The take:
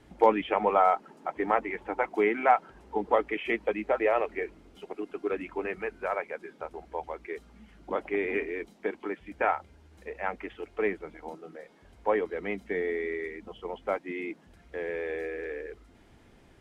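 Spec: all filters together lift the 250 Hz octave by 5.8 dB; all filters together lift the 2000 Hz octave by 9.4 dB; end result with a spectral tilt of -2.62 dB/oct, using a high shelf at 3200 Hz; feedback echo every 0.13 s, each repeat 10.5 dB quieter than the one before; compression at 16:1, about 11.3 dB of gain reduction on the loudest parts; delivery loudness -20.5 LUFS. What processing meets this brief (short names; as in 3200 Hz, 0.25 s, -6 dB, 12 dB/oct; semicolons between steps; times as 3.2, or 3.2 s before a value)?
bell 250 Hz +8 dB; bell 2000 Hz +8.5 dB; high shelf 3200 Hz +7 dB; compressor 16:1, threshold -24 dBFS; feedback echo 0.13 s, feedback 30%, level -10.5 dB; gain +10.5 dB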